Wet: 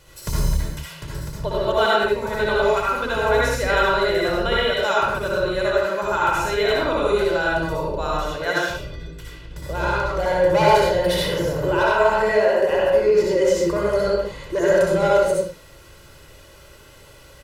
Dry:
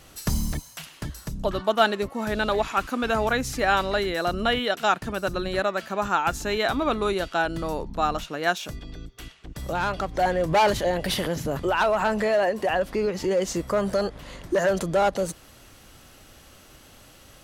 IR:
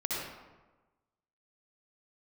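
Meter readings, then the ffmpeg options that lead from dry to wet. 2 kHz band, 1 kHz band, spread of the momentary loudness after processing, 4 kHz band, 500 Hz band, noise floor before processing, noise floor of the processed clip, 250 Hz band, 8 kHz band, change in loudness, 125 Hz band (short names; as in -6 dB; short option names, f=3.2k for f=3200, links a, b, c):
+5.0 dB, +3.0 dB, 11 LU, +3.5 dB, +6.5 dB, -51 dBFS, -46 dBFS, +1.5 dB, +1.5 dB, +5.0 dB, +4.5 dB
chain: -filter_complex "[0:a]aecho=1:1:2:0.58[a];[1:a]atrim=start_sample=2205,afade=t=out:st=0.32:d=0.01,atrim=end_sample=14553[b];[a][b]afir=irnorm=-1:irlink=0,volume=-2.5dB"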